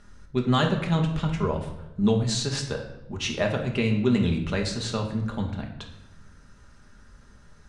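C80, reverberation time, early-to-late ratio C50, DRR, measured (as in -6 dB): 10.0 dB, 0.95 s, 7.5 dB, 1.0 dB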